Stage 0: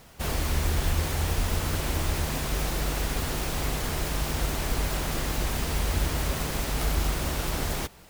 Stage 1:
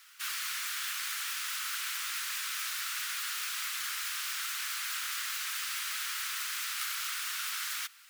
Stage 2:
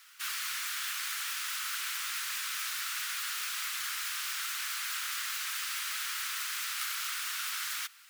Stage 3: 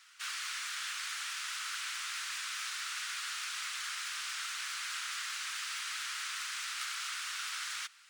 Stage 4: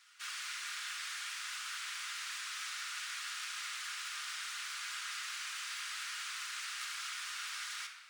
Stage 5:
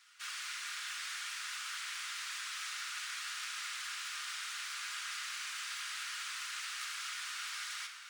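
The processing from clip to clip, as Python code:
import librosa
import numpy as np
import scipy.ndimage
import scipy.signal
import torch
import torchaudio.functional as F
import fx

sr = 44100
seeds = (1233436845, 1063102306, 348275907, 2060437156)

y1 = scipy.signal.sosfilt(scipy.signal.ellip(4, 1.0, 70, 1300.0, 'highpass', fs=sr, output='sos'), x)
y2 = fx.low_shelf(y1, sr, hz=320.0, db=8.5)
y3 = scipy.signal.savgol_filter(y2, 9, 4, mode='constant')
y3 = y3 * 10.0 ** (-2.0 / 20.0)
y4 = fx.room_shoebox(y3, sr, seeds[0], volume_m3=1400.0, walls='mixed', distance_m=1.3)
y4 = y4 * 10.0 ** (-4.5 / 20.0)
y5 = y4 + 10.0 ** (-11.0 / 20.0) * np.pad(y4, (int(662 * sr / 1000.0), 0))[:len(y4)]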